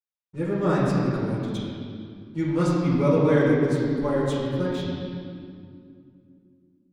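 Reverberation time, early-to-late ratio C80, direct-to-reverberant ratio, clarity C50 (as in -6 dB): 2.3 s, 0.0 dB, -9.5 dB, -1.5 dB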